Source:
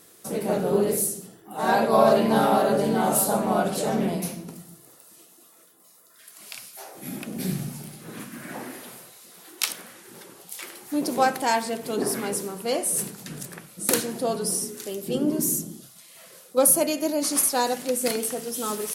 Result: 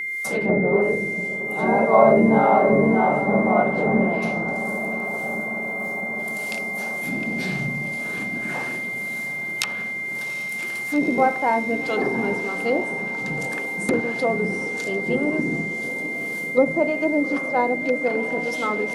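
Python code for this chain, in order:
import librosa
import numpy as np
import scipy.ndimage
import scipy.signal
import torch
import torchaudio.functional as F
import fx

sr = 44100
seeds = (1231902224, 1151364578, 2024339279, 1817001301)

p1 = fx.harmonic_tremolo(x, sr, hz=1.8, depth_pct=70, crossover_hz=500.0)
p2 = fx.backlash(p1, sr, play_db=-40.5)
p3 = p1 + F.gain(torch.from_numpy(p2), -7.5).numpy()
p4 = fx.env_lowpass_down(p3, sr, base_hz=990.0, full_db=-21.5)
p5 = p4 + 10.0 ** (-30.0 / 20.0) * np.sin(2.0 * np.pi * 2100.0 * np.arange(len(p4)) / sr)
p6 = p5 + fx.echo_diffused(p5, sr, ms=773, feedback_pct=74, wet_db=-13.0, dry=0)
p7 = fx.end_taper(p6, sr, db_per_s=270.0)
y = F.gain(torch.from_numpy(p7), 4.5).numpy()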